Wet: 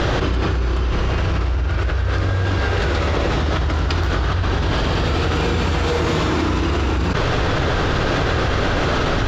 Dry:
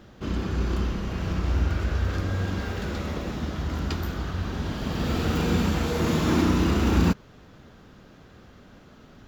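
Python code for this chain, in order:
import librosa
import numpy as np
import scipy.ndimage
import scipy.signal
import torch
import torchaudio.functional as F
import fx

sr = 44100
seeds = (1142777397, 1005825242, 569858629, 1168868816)

y = scipy.signal.sosfilt(scipy.signal.butter(2, 5300.0, 'lowpass', fs=sr, output='sos'), x)
y = fx.peak_eq(y, sr, hz=210.0, db=-14.0, octaves=0.64)
y = fx.env_flatten(y, sr, amount_pct=100)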